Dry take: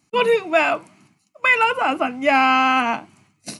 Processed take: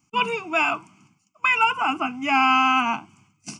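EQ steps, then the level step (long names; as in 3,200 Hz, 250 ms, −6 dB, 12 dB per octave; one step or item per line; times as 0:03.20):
phaser with its sweep stopped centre 2,700 Hz, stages 8
0.0 dB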